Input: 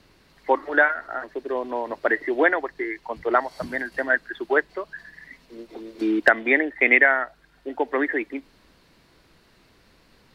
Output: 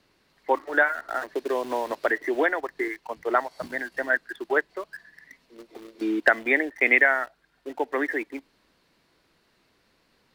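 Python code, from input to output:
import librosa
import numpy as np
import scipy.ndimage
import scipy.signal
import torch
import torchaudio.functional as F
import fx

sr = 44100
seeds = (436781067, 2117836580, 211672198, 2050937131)

p1 = fx.low_shelf(x, sr, hz=130.0, db=-9.5)
p2 = np.where(np.abs(p1) >= 10.0 ** (-35.0 / 20.0), p1, 0.0)
p3 = p1 + F.gain(torch.from_numpy(p2), -3.0).numpy()
p4 = fx.band_squash(p3, sr, depth_pct=70, at=(0.82, 2.88))
y = F.gain(torch.from_numpy(p4), -7.0).numpy()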